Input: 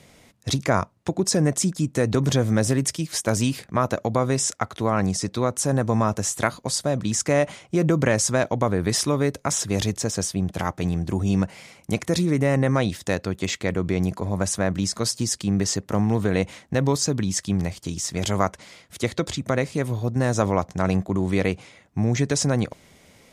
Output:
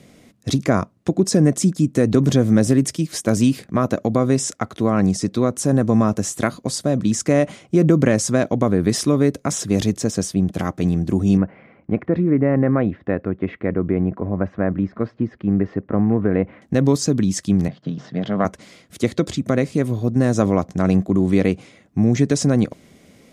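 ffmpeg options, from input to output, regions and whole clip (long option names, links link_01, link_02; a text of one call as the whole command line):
ffmpeg -i in.wav -filter_complex "[0:a]asettb=1/sr,asplit=3[link_01][link_02][link_03];[link_01]atrim=end=11.374[link_04];[link_02]atrim=start=11.37:end=16.62,asetpts=PTS-STARTPTS,afade=type=in:duration=0.004:curve=qsin,afade=type=out:start_time=5.246:duration=0.004:curve=qsin,lowpass=frequency=2000:width=0.5412,lowpass=frequency=2000:width=1.3066,equalizer=frequency=170:width=1.1:gain=-3.5[link_05];[link_03]atrim=start=16.616[link_06];[link_04][link_05]acrossfade=duration=0.004:curve1=hsin:curve2=qsin[link_07];[link_07][link_06]acrossfade=duration=0.004:curve1=qsin:curve2=hsin,asettb=1/sr,asplit=3[link_08][link_09][link_10];[link_08]atrim=end=17.684[link_11];[link_09]atrim=start=17.68:end=18.45,asetpts=PTS-STARTPTS,afade=type=in:duration=0.004:curve=qsin,afade=type=out:start_time=0.766:duration=0.004:curve=qsin,aeval=exprs='if(lt(val(0),0),0.447*val(0),val(0))':channel_layout=same,highpass=frequency=140:width=0.5412,highpass=frequency=140:width=1.3066,equalizer=frequency=140:width_type=q:width=4:gain=10,equalizer=frequency=340:width_type=q:width=4:gain=-9,equalizer=frequency=660:width_type=q:width=4:gain=4,equalizer=frequency=1700:width_type=q:width=4:gain=4,equalizer=frequency=2400:width_type=q:width=4:gain=-9,lowpass=frequency=3500:width=0.5412,lowpass=frequency=3500:width=1.3066[link_12];[link_10]atrim=start=18.446[link_13];[link_11][link_12]acrossfade=duration=0.004:curve1=hsin:curve2=qsin[link_14];[link_14][link_13]acrossfade=duration=0.004:curve1=qsin:curve2=hsin,equalizer=frequency=250:width_type=o:width=1.8:gain=9.5,bandreject=frequency=900:width=8,volume=-1dB" out.wav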